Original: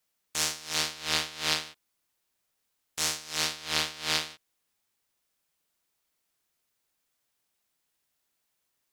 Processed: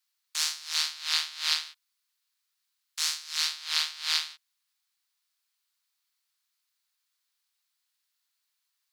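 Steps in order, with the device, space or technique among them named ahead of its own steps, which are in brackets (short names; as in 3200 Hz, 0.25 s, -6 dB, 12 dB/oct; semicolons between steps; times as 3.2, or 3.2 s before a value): headphones lying on a table (HPF 1000 Hz 24 dB/oct; bell 4300 Hz +7 dB 0.59 oct); 1.68–3.5 HPF 740 Hz 12 dB/oct; gain -2.5 dB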